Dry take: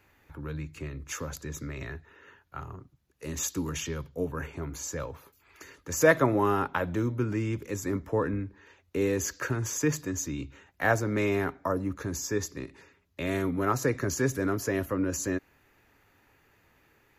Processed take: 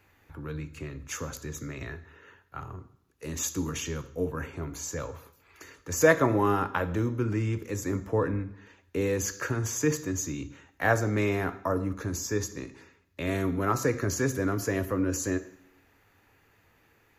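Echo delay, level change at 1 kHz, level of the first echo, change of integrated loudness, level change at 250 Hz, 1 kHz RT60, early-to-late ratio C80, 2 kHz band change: no echo, +0.5 dB, no echo, +0.5 dB, +0.5 dB, 0.70 s, 18.0 dB, 0.0 dB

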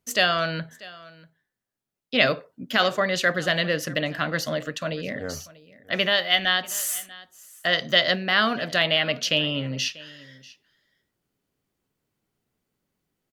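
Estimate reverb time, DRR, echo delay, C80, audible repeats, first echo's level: no reverb, no reverb, 640 ms, no reverb, 1, -21.0 dB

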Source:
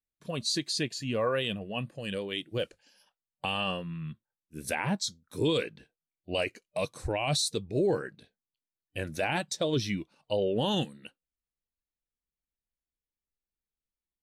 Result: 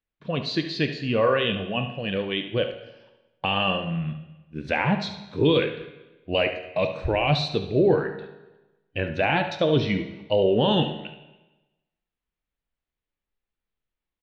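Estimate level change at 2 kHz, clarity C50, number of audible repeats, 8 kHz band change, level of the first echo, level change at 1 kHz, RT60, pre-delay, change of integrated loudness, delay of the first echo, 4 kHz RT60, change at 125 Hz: +7.5 dB, 8.0 dB, 1, under -15 dB, -11.5 dB, +8.0 dB, 1.1 s, 13 ms, +7.0 dB, 71 ms, 0.95 s, +8.0 dB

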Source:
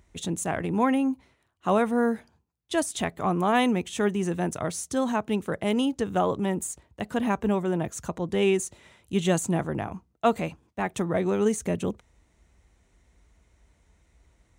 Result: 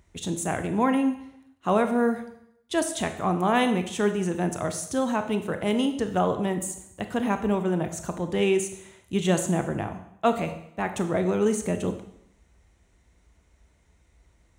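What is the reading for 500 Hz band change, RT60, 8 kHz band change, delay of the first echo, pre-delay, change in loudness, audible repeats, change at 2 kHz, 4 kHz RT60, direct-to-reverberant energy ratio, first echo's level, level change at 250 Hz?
+1.0 dB, 0.70 s, +0.5 dB, no echo, 22 ms, +0.5 dB, no echo, +0.5 dB, 0.70 s, 7.5 dB, no echo, +0.5 dB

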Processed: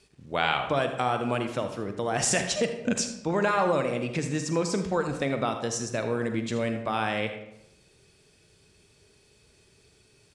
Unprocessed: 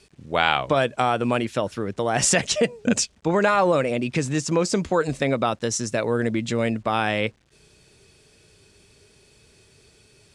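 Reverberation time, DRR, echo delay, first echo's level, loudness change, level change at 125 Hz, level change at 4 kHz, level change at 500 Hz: 0.85 s, 6.0 dB, 80 ms, -13.5 dB, -5.0 dB, -5.0 dB, -5.5 dB, -5.0 dB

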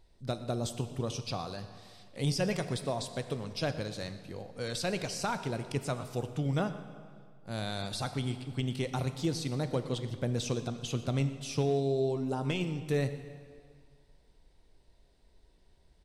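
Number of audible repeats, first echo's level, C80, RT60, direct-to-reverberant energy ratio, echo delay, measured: 1, -19.0 dB, 11.5 dB, 2.1 s, 9.5 dB, 119 ms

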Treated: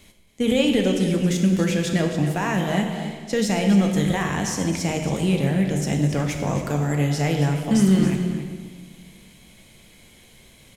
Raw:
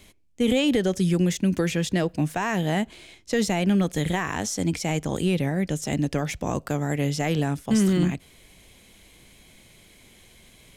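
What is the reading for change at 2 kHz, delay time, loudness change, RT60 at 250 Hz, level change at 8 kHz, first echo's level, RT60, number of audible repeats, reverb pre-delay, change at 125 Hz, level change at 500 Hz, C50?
+2.0 dB, 273 ms, +3.0 dB, 2.0 s, +2.0 dB, -11.5 dB, 1.6 s, 1, 3 ms, +4.0 dB, +2.5 dB, 4.5 dB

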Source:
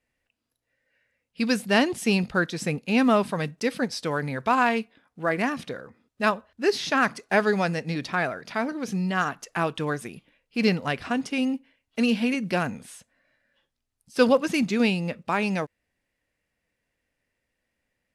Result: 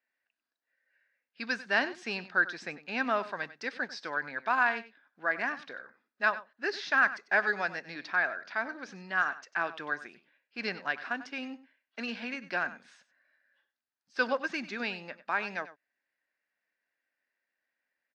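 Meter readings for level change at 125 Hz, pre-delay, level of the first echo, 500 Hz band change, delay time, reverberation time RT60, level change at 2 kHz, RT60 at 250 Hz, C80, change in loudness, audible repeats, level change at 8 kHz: -22.0 dB, no reverb, -15.5 dB, -11.5 dB, 96 ms, no reverb, -0.5 dB, no reverb, no reverb, -6.5 dB, 1, under -15 dB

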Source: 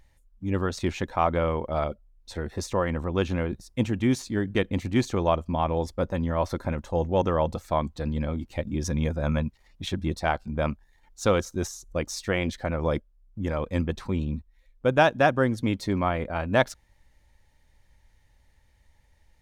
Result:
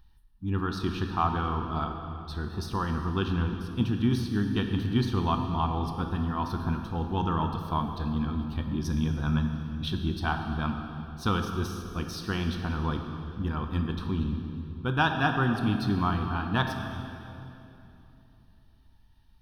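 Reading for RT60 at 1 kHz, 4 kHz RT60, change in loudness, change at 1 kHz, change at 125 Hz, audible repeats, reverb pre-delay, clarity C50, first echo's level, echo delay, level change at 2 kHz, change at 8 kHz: 2.8 s, 2.4 s, -2.5 dB, -1.5 dB, +0.5 dB, no echo, 5 ms, 5.5 dB, no echo, no echo, -2.0 dB, -9.5 dB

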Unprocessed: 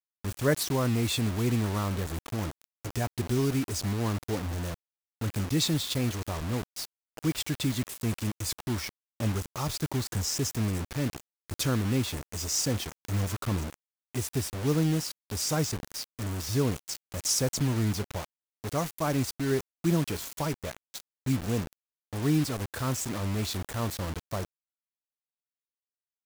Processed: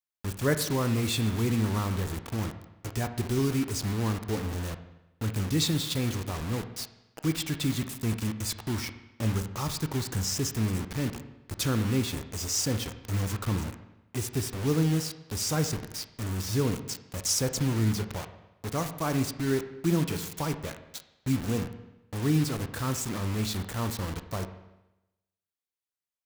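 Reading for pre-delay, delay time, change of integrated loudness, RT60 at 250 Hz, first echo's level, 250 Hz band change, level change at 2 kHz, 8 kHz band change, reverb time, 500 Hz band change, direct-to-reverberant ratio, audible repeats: 18 ms, no echo, +0.5 dB, 0.95 s, no echo, +0.5 dB, +0.5 dB, 0.0 dB, 0.95 s, -0.5 dB, 8.5 dB, no echo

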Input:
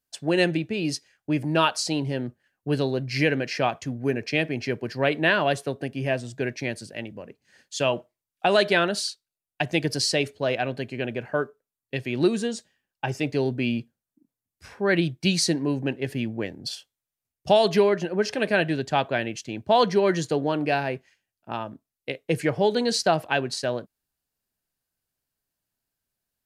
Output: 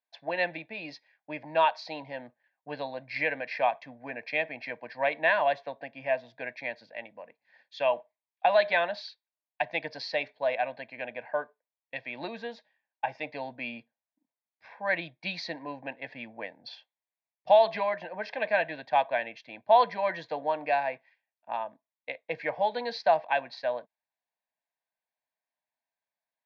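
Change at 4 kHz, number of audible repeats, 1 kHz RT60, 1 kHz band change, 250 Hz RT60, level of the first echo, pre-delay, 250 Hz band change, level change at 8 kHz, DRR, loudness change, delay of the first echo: -11.0 dB, no echo, no reverb, 0.0 dB, no reverb, no echo, no reverb, -18.0 dB, under -25 dB, no reverb, -5.0 dB, no echo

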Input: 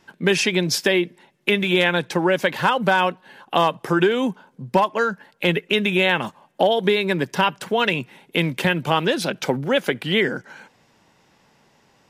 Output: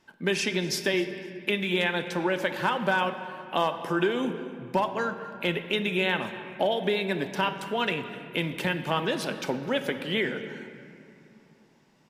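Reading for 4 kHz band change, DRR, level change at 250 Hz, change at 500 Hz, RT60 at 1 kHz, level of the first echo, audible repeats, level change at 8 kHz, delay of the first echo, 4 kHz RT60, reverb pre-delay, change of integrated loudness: -7.5 dB, 6.5 dB, -7.0 dB, -7.5 dB, 2.5 s, -19.0 dB, 1, -7.5 dB, 255 ms, 1.5 s, 3 ms, -7.5 dB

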